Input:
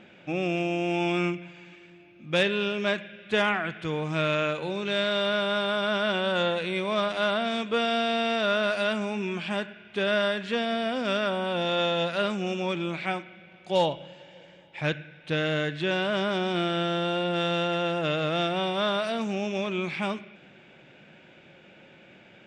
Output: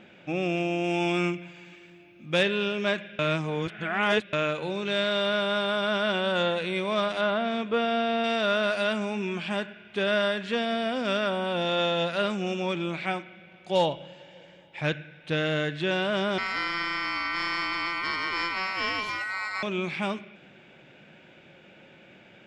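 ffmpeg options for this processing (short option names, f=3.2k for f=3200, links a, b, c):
-filter_complex "[0:a]asettb=1/sr,asplit=3[a][b][c];[a]atrim=end=0.844[d];[b]atrim=start=0.84:end=2.36,asetpts=PTS-STARTPTS,afade=t=in:d=0.004:c=qsin,afade=t=out:st=1.516:d=0.004:c=qsin,highshelf=f=7.2k:g=8[e];[c]atrim=start=2.356[f];[d][e]acrossfade=d=0.004:c1=hsin:c2=qsin[g];[g][f]acrossfade=d=0.004:c1=qsin:c2=hsin,asettb=1/sr,asplit=3[h][i][j];[h]atrim=end=7.214[k];[i]atrim=start=7.21:end=8.24,asetpts=PTS-STARTPTS,afade=t=in:d=0.004:c=qsin,afade=t=out:st=1.026:d=0.004:c=qsin,aemphasis=mode=reproduction:type=75fm[l];[j]atrim=start=8.236[m];[k][l]acrossfade=d=0.004:c1=hsin:c2=qsin[n];[n][m]acrossfade=d=0.004:c1=qsin:c2=hsin,asettb=1/sr,asplit=3[o][p][q];[o]atrim=end=16.384[r];[p]atrim=start=16.38:end=19.63,asetpts=PTS-STARTPTS,afade=t=in:d=0.004:c=qsin,afade=t=out:st=3.246:d=0.004:c=qsin,aeval=exprs='val(0)*sin(2*PI*1700*n/s)':c=same[s];[q]atrim=start=19.626[t];[r][s]acrossfade=d=0.004:c1=hsin:c2=qsin[u];[u][t]acrossfade=d=0.004:c1=qsin:c2=hsin,asplit=3[v][w][x];[v]atrim=end=3.192[y];[w]atrim=start=3.188:end=4.332,asetpts=PTS-STARTPTS,areverse[z];[x]atrim=start=4.328[aa];[y][z]acrossfade=d=0.004:c1=hsin:c2=hsin[ab];[ab][aa]acrossfade=d=0.004:c1=hsin:c2=hsin"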